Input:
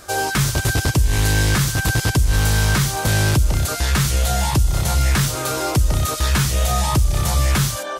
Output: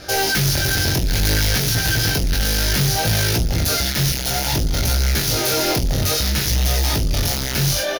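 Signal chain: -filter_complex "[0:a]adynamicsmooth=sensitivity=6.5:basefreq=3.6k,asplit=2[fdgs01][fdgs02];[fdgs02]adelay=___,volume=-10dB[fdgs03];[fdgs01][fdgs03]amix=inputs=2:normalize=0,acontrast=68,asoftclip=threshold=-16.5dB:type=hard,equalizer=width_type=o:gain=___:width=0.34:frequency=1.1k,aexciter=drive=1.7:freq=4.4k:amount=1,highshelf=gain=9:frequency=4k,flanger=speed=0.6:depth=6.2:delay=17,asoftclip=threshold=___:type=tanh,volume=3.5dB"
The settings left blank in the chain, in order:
43, -15, -16dB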